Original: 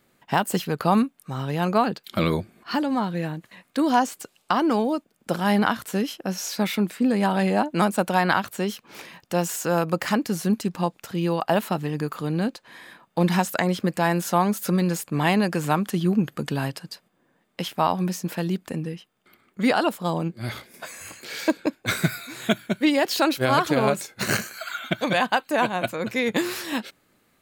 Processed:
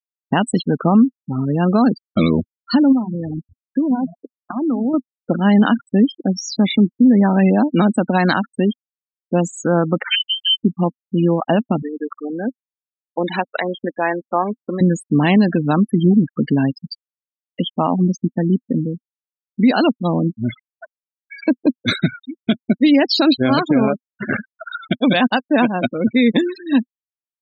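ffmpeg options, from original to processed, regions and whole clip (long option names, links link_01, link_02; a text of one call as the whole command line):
ffmpeg -i in.wav -filter_complex "[0:a]asettb=1/sr,asplit=3[link_01][link_02][link_03];[link_01]atrim=end=2.924[link_04];[link_02]atrim=start=2.92:end=4.94,asetpts=PTS-STARTPTS,afade=type=in:duration=0.004:curve=qsin,afade=type=out:start_time=2.016:duration=0.004:curve=qsin,bandreject=frequency=50:width_type=h:width=6,bandreject=frequency=100:width_type=h:width=6,bandreject=frequency=150:width_type=h:width=6,bandreject=frequency=200:width_type=h:width=6,acompressor=threshold=-27dB:ratio=6:attack=3.2:release=140:knee=1:detection=peak,asplit=5[link_05][link_06][link_07][link_08][link_09];[link_06]adelay=127,afreqshift=-75,volume=-12.5dB[link_10];[link_07]adelay=254,afreqshift=-150,volume=-19.4dB[link_11];[link_08]adelay=381,afreqshift=-225,volume=-26.4dB[link_12];[link_09]adelay=508,afreqshift=-300,volume=-33.3dB[link_13];[link_05][link_10][link_11][link_12][link_13]amix=inputs=5:normalize=0,atrim=end_sample=89082[link_14];[link_03]atrim=start=4.936[link_15];[link_04][link_14]acrossfade=duration=0.004:curve1=hsin:curve2=qsin[link_16];[link_16][link_15]acrossfade=duration=0.004:curve1=qsin:curve2=hsin,asettb=1/sr,asplit=3[link_17][link_18][link_19];[link_17]atrim=end=10.034[link_20];[link_18]atrim=start=10.03:end=10.64,asetpts=PTS-STARTPTS,afade=type=in:duration=0.004:curve=qsin,afade=type=out:start_time=0.606:duration=0.004:curve=qsin,bandreject=frequency=260:width=6.4,lowpass=frequency=2800:width_type=q:width=0.5098,lowpass=frequency=2800:width_type=q:width=0.6013,lowpass=frequency=2800:width_type=q:width=0.9,lowpass=frequency=2800:width_type=q:width=2.563,afreqshift=-3300,adynamicequalizer=threshold=0.02:dfrequency=2500:dqfactor=0.7:tfrequency=2500:tqfactor=0.7:attack=5:release=100:ratio=0.375:range=4:mode=cutabove:tftype=highshelf[link_21];[link_19]atrim=start=10.636[link_22];[link_20][link_21]acrossfade=duration=0.004:curve1=hsin:curve2=qsin[link_23];[link_23][link_22]acrossfade=duration=0.004:curve1=qsin:curve2=hsin,asettb=1/sr,asplit=3[link_24][link_25][link_26];[link_24]atrim=end=11.824[link_27];[link_25]atrim=start=11.82:end=14.81,asetpts=PTS-STARTPTS,afade=type=in:duration=0.004:curve=qsin,afade=type=out:start_time=2.986:duration=0.004:curve=qsin,aeval=exprs='val(0)*gte(abs(val(0)),0.0211)':channel_layout=same,highpass=440,lowpass=5100[link_28];[link_26]atrim=start=14.806[link_29];[link_27][link_28]acrossfade=duration=0.004:curve1=hsin:curve2=qsin[link_30];[link_30][link_29]acrossfade=duration=0.004:curve1=qsin:curve2=hsin,asettb=1/sr,asplit=3[link_31][link_32][link_33];[link_31]atrim=end=23.874[link_34];[link_32]atrim=start=23.87:end=24.63,asetpts=PTS-STARTPTS,afade=type=in:duration=0.004:curve=qsin,afade=type=out:start_time=0.756:duration=0.004:curve=qsin,lowpass=2300,lowshelf=frequency=410:gain=-7.5[link_35];[link_33]atrim=start=24.626[link_36];[link_34][link_35]acrossfade=duration=0.004:curve1=hsin:curve2=qsin[link_37];[link_37][link_36]acrossfade=duration=0.004:curve1=qsin:curve2=hsin,afftfilt=real='re*gte(hypot(re,im),0.0708)':imag='im*gte(hypot(re,im),0.0708)':win_size=1024:overlap=0.75,equalizer=frequency=250:width_type=o:width=0.67:gain=12,equalizer=frequency=1000:width_type=o:width=0.67:gain=-4,equalizer=frequency=4000:width_type=o:width=0.67:gain=8,alimiter=level_in=9.5dB:limit=-1dB:release=50:level=0:latency=1,volume=-4.5dB" out.wav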